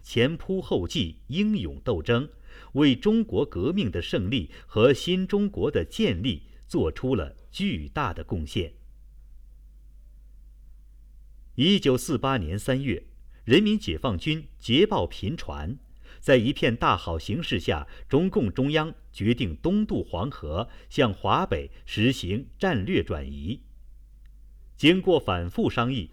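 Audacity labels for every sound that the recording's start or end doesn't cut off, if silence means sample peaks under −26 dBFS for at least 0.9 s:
11.580000	23.530000	sound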